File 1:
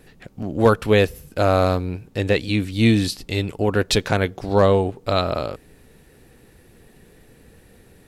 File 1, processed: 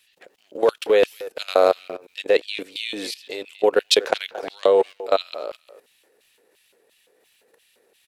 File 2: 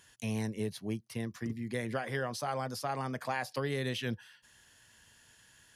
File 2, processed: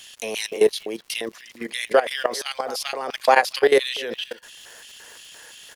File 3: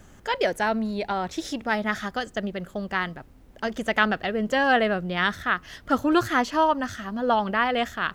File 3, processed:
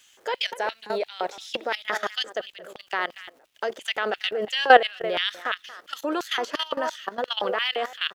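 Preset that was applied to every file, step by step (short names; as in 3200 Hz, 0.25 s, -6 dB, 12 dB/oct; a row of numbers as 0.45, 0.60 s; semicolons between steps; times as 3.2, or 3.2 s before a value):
speakerphone echo 0.23 s, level -13 dB; LFO high-pass square 2.9 Hz 470–3000 Hz; low shelf 140 Hz -10 dB; crackle 280/s -52 dBFS; level quantiser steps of 16 dB; normalise peaks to -1.5 dBFS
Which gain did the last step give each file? +2.0, +19.5, +6.5 dB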